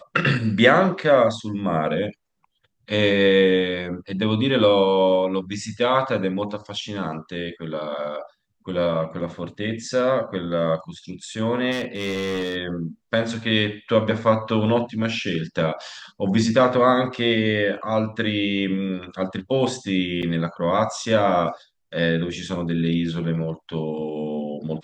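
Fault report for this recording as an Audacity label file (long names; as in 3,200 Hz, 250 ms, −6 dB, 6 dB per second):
11.710000	12.560000	clipping −22 dBFS
20.220000	20.230000	drop-out 7.5 ms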